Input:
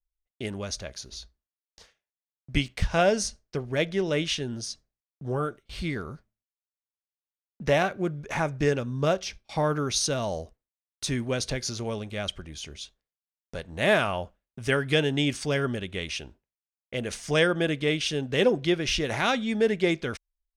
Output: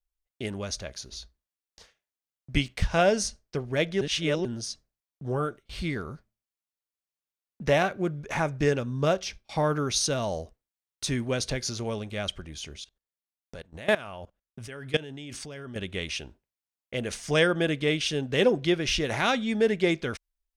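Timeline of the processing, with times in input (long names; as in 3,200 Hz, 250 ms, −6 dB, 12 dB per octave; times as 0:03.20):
0:04.01–0:04.45: reverse
0:12.80–0:15.76: output level in coarse steps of 20 dB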